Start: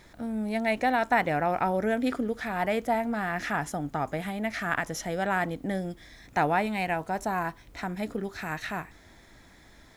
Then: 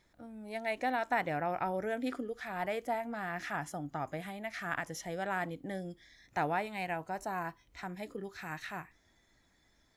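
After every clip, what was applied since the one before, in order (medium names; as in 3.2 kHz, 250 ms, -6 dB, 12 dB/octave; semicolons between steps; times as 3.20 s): spectral noise reduction 9 dB; trim -7.5 dB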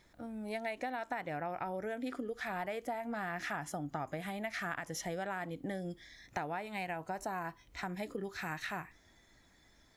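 compression 12:1, threshold -39 dBFS, peak gain reduction 13.5 dB; trim +4.5 dB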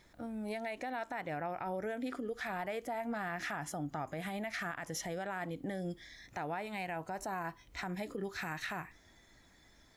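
peak limiter -31.5 dBFS, peak gain reduction 8 dB; trim +2 dB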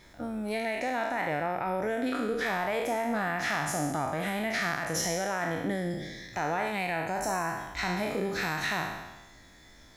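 spectral sustain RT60 1.12 s; trim +6 dB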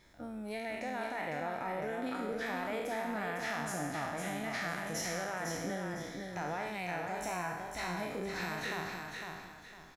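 feedback delay 505 ms, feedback 31%, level -5 dB; trim -8 dB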